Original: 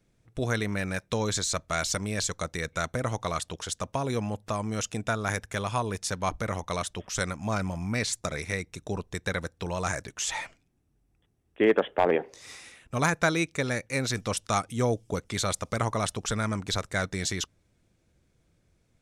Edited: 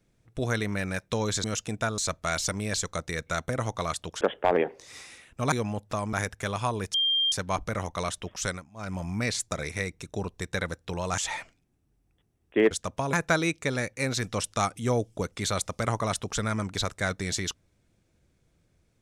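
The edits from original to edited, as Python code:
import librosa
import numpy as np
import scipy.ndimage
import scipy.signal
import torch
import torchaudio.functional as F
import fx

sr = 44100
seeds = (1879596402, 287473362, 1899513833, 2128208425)

y = fx.edit(x, sr, fx.swap(start_s=3.67, length_s=0.42, other_s=11.75, other_length_s=1.31),
    fx.move(start_s=4.7, length_s=0.54, to_s=1.44),
    fx.insert_tone(at_s=6.05, length_s=0.38, hz=3190.0, db=-21.5),
    fx.fade_down_up(start_s=7.17, length_s=0.56, db=-23.0, fade_s=0.26),
    fx.cut(start_s=9.91, length_s=0.31), tone=tone)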